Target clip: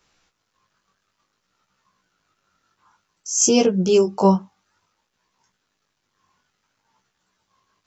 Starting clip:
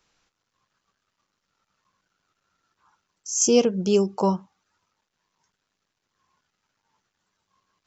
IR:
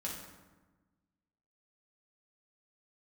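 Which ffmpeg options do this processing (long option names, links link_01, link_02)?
-af "flanger=delay=15.5:depth=5.5:speed=0.56,volume=7.5dB"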